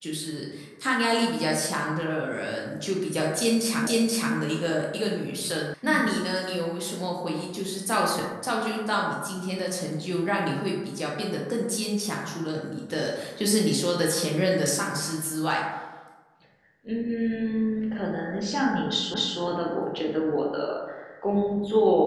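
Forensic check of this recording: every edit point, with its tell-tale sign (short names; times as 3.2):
3.87 repeat of the last 0.48 s
5.74 sound cut off
19.14 repeat of the last 0.25 s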